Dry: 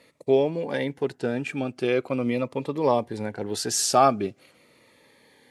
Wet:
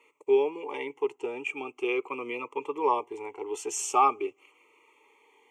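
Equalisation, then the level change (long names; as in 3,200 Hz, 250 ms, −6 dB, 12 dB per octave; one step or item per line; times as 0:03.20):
high-pass with resonance 470 Hz, resonance Q 3.7
phaser with its sweep stopped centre 1,000 Hz, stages 8
phaser with its sweep stopped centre 2,600 Hz, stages 8
+1.5 dB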